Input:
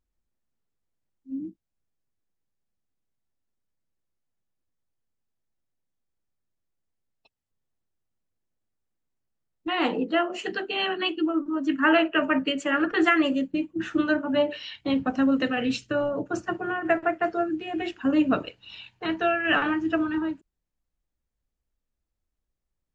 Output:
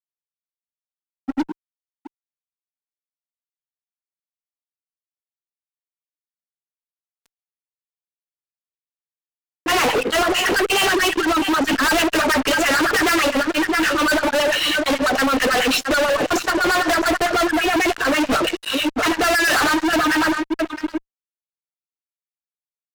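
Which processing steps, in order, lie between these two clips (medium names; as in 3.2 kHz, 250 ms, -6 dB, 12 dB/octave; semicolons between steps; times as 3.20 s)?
delay 663 ms -17.5 dB; LFO high-pass sine 9.1 Hz 320–1700 Hz; fuzz box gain 39 dB, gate -48 dBFS; trim -3 dB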